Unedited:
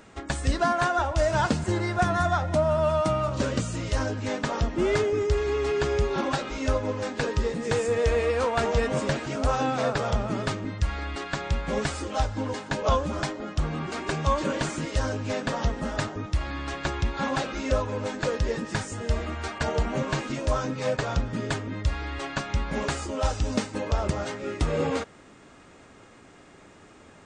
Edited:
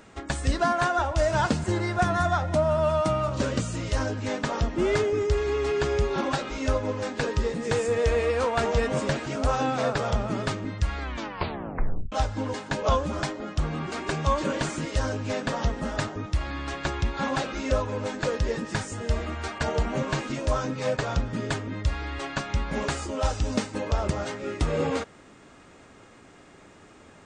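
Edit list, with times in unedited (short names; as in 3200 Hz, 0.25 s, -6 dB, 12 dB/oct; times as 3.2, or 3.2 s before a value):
10.99 tape stop 1.13 s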